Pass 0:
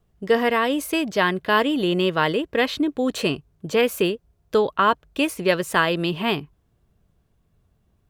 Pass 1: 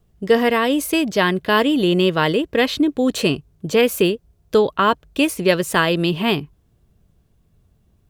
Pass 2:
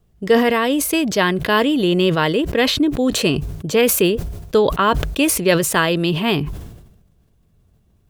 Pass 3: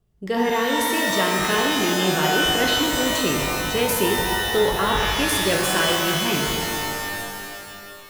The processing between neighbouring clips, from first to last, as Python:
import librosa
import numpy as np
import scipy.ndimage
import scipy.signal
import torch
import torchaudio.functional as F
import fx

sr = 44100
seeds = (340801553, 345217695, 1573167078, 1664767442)

y1 = fx.peak_eq(x, sr, hz=1200.0, db=-5.0, octaves=2.5)
y1 = y1 * 10.0 ** (6.0 / 20.0)
y2 = fx.sustainer(y1, sr, db_per_s=54.0)
y3 = fx.rev_shimmer(y2, sr, seeds[0], rt60_s=2.6, semitones=12, shimmer_db=-2, drr_db=0.5)
y3 = y3 * 10.0 ** (-8.5 / 20.0)